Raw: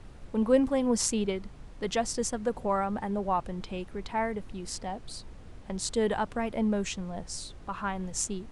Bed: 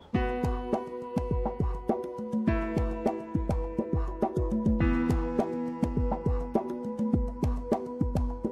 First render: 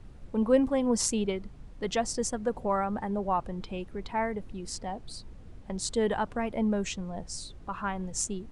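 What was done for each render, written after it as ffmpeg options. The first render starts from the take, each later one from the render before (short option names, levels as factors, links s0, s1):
-af "afftdn=nr=6:nf=-48"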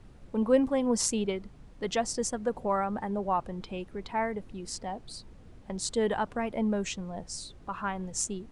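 -af "lowshelf=f=100:g=-6"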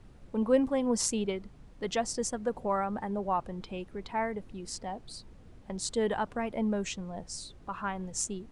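-af "volume=0.841"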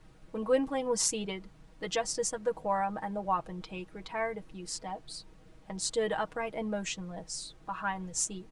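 -af "lowshelf=f=440:g=-6,aecho=1:1:6.3:0.73"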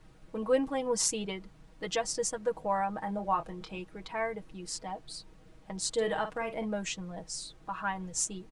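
-filter_complex "[0:a]asettb=1/sr,asplit=3[s0][s1][s2];[s0]atrim=end=3.044[s3];[s1]atrim=start=3.04:end=3.78,asetpts=PTS-STARTPTS,afade=t=in:d=0.004:c=qsin,afade=t=out:st=0.736:d=0.004:c=qsin,asplit=2[s4][s5];[s5]adelay=25,volume=0.398[s6];[s4][s6]amix=inputs=2:normalize=0,atrim=end_sample=32634[s7];[s2]atrim=start=3.776[s8];[s3][s7]acrossfade=d=0.004:c1=hsin:c2=qsin[s9];[s9][s8]acrossfade=d=0.004:c1=qsin:c2=hsin,asplit=3[s10][s11][s12];[s10]afade=t=out:st=5.95:d=0.02[s13];[s11]asplit=2[s14][s15];[s15]adelay=49,volume=0.335[s16];[s14][s16]amix=inputs=2:normalize=0,afade=t=in:st=5.95:d=0.02,afade=t=out:st=6.64:d=0.02[s17];[s12]afade=t=in:st=6.64:d=0.02[s18];[s13][s17][s18]amix=inputs=3:normalize=0"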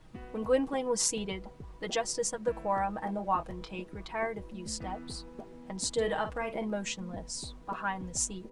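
-filter_complex "[1:a]volume=0.126[s0];[0:a][s0]amix=inputs=2:normalize=0"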